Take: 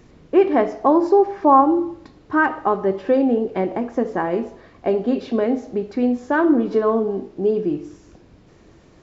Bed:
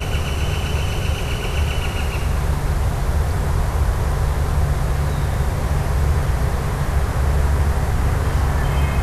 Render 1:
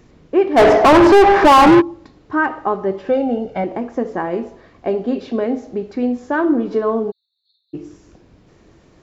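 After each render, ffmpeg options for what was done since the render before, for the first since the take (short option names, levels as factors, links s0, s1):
-filter_complex "[0:a]asplit=3[s0][s1][s2];[s0]afade=t=out:st=0.56:d=0.02[s3];[s1]asplit=2[s4][s5];[s5]highpass=f=720:p=1,volume=70.8,asoftclip=type=tanh:threshold=0.841[s6];[s4][s6]amix=inputs=2:normalize=0,lowpass=f=1700:p=1,volume=0.501,afade=t=in:st=0.56:d=0.02,afade=t=out:st=1.8:d=0.02[s7];[s2]afade=t=in:st=1.8:d=0.02[s8];[s3][s7][s8]amix=inputs=3:normalize=0,asettb=1/sr,asplit=3[s9][s10][s11];[s9]atrim=end=3.094[s12];[s10]atrim=start=3.09:end=3.64,asetpts=PTS-STARTPTS,afade=t=in:d=0.004:c=qsin,afade=t=out:st=0.546:d=0.004:c=qsin,aecho=1:1:1.4:0.71,atrim=end_sample=24255[s13];[s11]atrim=start=3.636[s14];[s12][s13]acrossfade=d=0.004:c1=hsin:c2=qsin[s15];[s15][s14]acrossfade=d=0.004:c1=qsin:c2=hsin,asplit=3[s16][s17][s18];[s16]afade=t=out:st=7.1:d=0.02[s19];[s17]asuperpass=centerf=4000:order=12:qfactor=4.7,afade=t=in:st=7.1:d=0.02,afade=t=out:st=7.73:d=0.02[s20];[s18]afade=t=in:st=7.73:d=0.02[s21];[s19][s20][s21]amix=inputs=3:normalize=0"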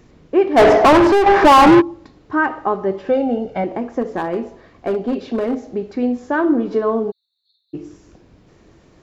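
-filter_complex "[0:a]asettb=1/sr,asplit=3[s0][s1][s2];[s0]atrim=end=4.014[s3];[s1]atrim=start=4.01:end=5.67,asetpts=PTS-STARTPTS,afade=t=in:d=0.004:c=qsin,afade=t=out:st=1.656:d=0.004:c=qsin,volume=5.31,asoftclip=hard,volume=0.188[s4];[s2]atrim=start=5.666[s5];[s3][s4]acrossfade=d=0.004:c1=hsin:c2=qsin[s6];[s6][s5]acrossfade=d=0.004:c1=qsin:c2=hsin,asplit=2[s7][s8];[s7]atrim=end=1.26,asetpts=PTS-STARTPTS,afade=t=out:st=0.85:d=0.41:silence=0.446684[s9];[s8]atrim=start=1.26,asetpts=PTS-STARTPTS,afade=t=in:d=0.004:c=hsin:silence=0.446684[s10];[s9][s10]concat=n=2:v=0:a=1"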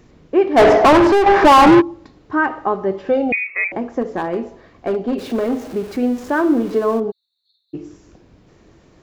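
-filter_complex "[0:a]asettb=1/sr,asplit=3[s0][s1][s2];[s0]atrim=end=3.324[s3];[s1]atrim=start=3.32:end=3.72,asetpts=PTS-STARTPTS,afade=t=in:d=0.004:c=qsin,afade=t=out:st=0.396:d=0.004:c=qsin,lowpass=f=2300:t=q:w=0.5098,lowpass=f=2300:t=q:w=0.6013,lowpass=f=2300:t=q:w=0.9,lowpass=f=2300:t=q:w=2.563,afreqshift=-2700[s4];[s2]atrim=start=3.716[s5];[s3][s4]acrossfade=d=0.004:c1=hsin:c2=qsin[s6];[s6][s5]acrossfade=d=0.004:c1=qsin:c2=hsin,asettb=1/sr,asplit=3[s7][s8][s9];[s7]atrim=end=5.184[s10];[s8]atrim=start=5.18:end=7,asetpts=PTS-STARTPTS,afade=t=in:d=0.004:c=qsin,afade=t=out:st=1.816:d=0.004:c=qsin,aeval=exprs='val(0)+0.5*0.0237*sgn(val(0))':c=same[s11];[s9]atrim=start=6.996[s12];[s10][s11]acrossfade=d=0.004:c1=hsin:c2=qsin[s13];[s13][s12]acrossfade=d=0.004:c1=qsin:c2=hsin"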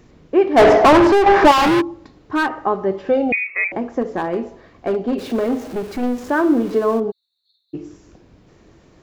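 -filter_complex "[0:a]asettb=1/sr,asplit=3[s0][s1][s2];[s0]atrim=end=1.514[s3];[s1]atrim=start=1.51:end=2.53,asetpts=PTS-STARTPTS,afade=t=in:d=0.004:c=qsin,afade=t=out:st=1.016:d=0.004:c=qsin,asoftclip=type=hard:threshold=0.211[s4];[s2]atrim=start=2.526[s5];[s3][s4]acrossfade=d=0.004:c1=hsin:c2=qsin[s6];[s6][s5]acrossfade=d=0.004:c1=qsin:c2=hsin,asettb=1/sr,asplit=3[s7][s8][s9];[s7]atrim=end=5.684[s10];[s8]atrim=start=5.68:end=6.28,asetpts=PTS-STARTPTS,afade=t=in:d=0.004:c=qsin,afade=t=out:st=0.596:d=0.004:c=qsin,aeval=exprs='clip(val(0),-1,0.0631)':c=same[s11];[s9]atrim=start=6.276[s12];[s10][s11]acrossfade=d=0.004:c1=hsin:c2=qsin[s13];[s13][s12]acrossfade=d=0.004:c1=qsin:c2=hsin"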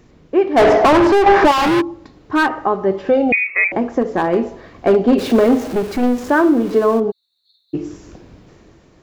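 -af "dynaudnorm=f=120:g=13:m=2.82,alimiter=limit=0.562:level=0:latency=1:release=406"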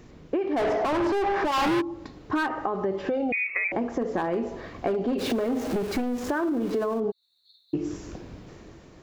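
-af "alimiter=limit=0.251:level=0:latency=1:release=31,acompressor=threshold=0.0631:ratio=6"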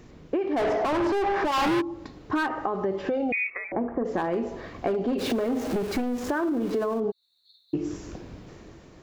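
-filter_complex "[0:a]asplit=3[s0][s1][s2];[s0]afade=t=out:st=3.49:d=0.02[s3];[s1]lowpass=f=1700:w=0.5412,lowpass=f=1700:w=1.3066,afade=t=in:st=3.49:d=0.02,afade=t=out:st=4.04:d=0.02[s4];[s2]afade=t=in:st=4.04:d=0.02[s5];[s3][s4][s5]amix=inputs=3:normalize=0"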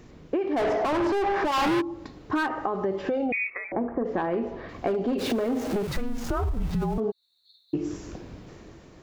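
-filter_complex "[0:a]asettb=1/sr,asplit=3[s0][s1][s2];[s0]atrim=end=3.264[s3];[s1]atrim=start=3.26:end=4.69,asetpts=PTS-STARTPTS,afade=t=in:d=0.004:c=qsin,afade=t=out:st=1.426:d=0.004:c=qsin,lowpass=3400[s4];[s2]atrim=start=4.686[s5];[s3][s4]acrossfade=d=0.004:c1=hsin:c2=qsin[s6];[s6][s5]acrossfade=d=0.004:c1=qsin:c2=hsin,asettb=1/sr,asplit=3[s7][s8][s9];[s7]atrim=end=5.874[s10];[s8]atrim=start=5.87:end=6.98,asetpts=PTS-STARTPTS,afade=t=in:d=0.004:c=qsin,afade=t=out:st=1.106:d=0.004:c=qsin,afreqshift=-260[s11];[s9]atrim=start=6.976[s12];[s10][s11]acrossfade=d=0.004:c1=hsin:c2=qsin[s13];[s13][s12]acrossfade=d=0.004:c1=qsin:c2=hsin"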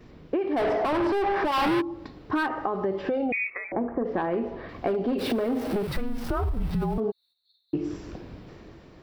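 -af "agate=range=0.398:threshold=0.00178:ratio=16:detection=peak,equalizer=f=6700:t=o:w=0.31:g=-14"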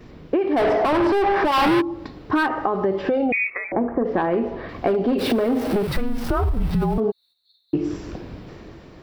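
-af "volume=2"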